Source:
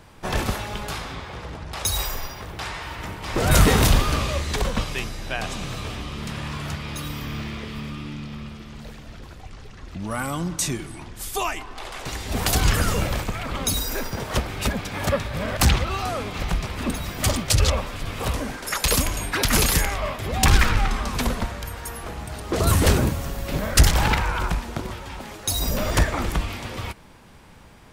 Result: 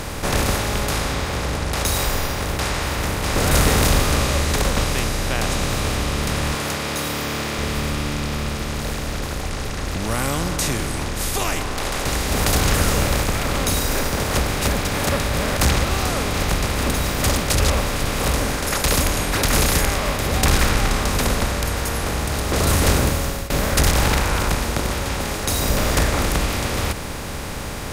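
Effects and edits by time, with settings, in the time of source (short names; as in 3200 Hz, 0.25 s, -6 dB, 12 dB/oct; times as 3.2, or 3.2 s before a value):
6.54–7.59 HPF 300 Hz
23.08–23.5 fade out
whole clip: per-bin compression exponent 0.4; notches 50/100 Hz; gain -5 dB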